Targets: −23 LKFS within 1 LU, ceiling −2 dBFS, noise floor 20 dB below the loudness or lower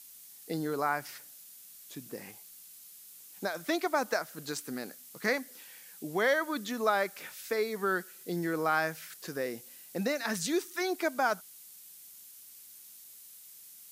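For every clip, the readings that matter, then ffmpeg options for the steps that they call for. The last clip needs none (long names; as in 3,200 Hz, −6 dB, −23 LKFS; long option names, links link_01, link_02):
background noise floor −52 dBFS; target noise floor −53 dBFS; integrated loudness −32.5 LKFS; sample peak −14.0 dBFS; target loudness −23.0 LKFS
→ -af "afftdn=noise_reduction=6:noise_floor=-52"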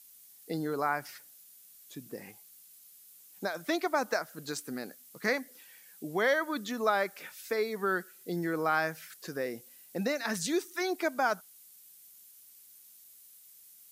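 background noise floor −56 dBFS; integrated loudness −32.5 LKFS; sample peak −14.0 dBFS; target loudness −23.0 LKFS
→ -af "volume=9.5dB"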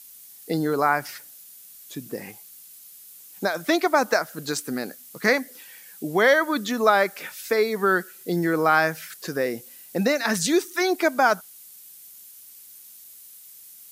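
integrated loudness −23.0 LKFS; sample peak −4.5 dBFS; background noise floor −47 dBFS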